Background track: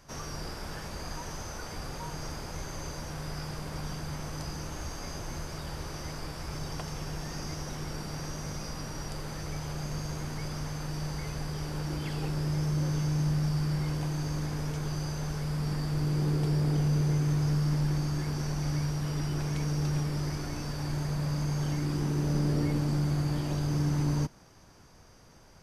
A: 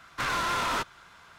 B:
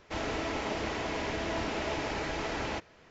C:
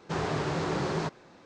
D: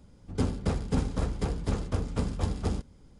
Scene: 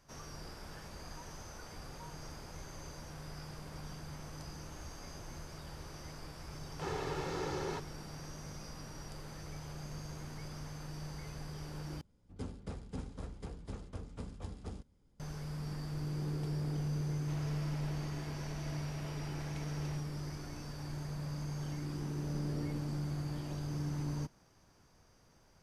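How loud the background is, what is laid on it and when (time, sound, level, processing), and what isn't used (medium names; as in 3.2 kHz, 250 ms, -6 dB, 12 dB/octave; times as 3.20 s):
background track -9.5 dB
6.71 s: add C -9.5 dB + comb 2.3 ms, depth 59%
12.01 s: replace with D -15 dB
17.17 s: add B -17 dB
not used: A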